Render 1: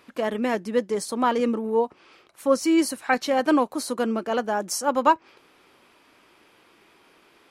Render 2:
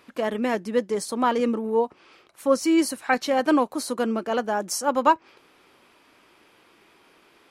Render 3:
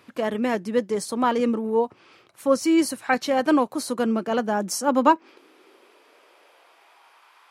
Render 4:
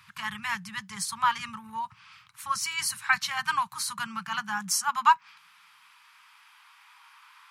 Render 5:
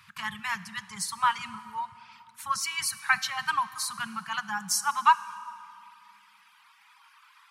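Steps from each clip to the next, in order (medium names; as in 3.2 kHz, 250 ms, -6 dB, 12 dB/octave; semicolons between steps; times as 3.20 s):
no audible change
high-pass sweep 100 Hz -> 950 Hz, 3.63–7.29 s
inverse Chebyshev band-stop 250–650 Hz, stop band 40 dB; trim +2 dB
reverb removal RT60 1.5 s; on a send at -14 dB: reverberation RT60 2.7 s, pre-delay 8 ms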